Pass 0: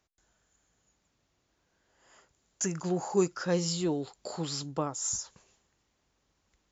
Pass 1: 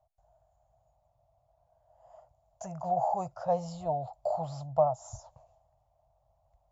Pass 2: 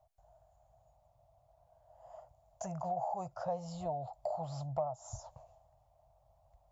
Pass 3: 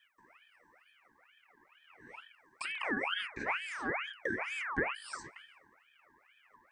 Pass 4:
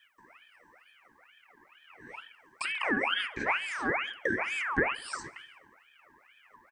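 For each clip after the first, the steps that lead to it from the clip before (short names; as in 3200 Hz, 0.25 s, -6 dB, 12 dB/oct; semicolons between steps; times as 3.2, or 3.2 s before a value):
EQ curve 130 Hz 0 dB, 220 Hz -25 dB, 400 Hz -29 dB, 650 Hz +12 dB, 1600 Hz -25 dB; gain +6.5 dB
compressor 2.5:1, threshold -41 dBFS, peak gain reduction 14.5 dB; gain +2.5 dB
de-hum 53.14 Hz, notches 16; ring modulator with a swept carrier 1700 Hz, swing 45%, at 2.2 Hz; gain +5 dB
feedback echo 68 ms, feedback 59%, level -23.5 dB; gain +5.5 dB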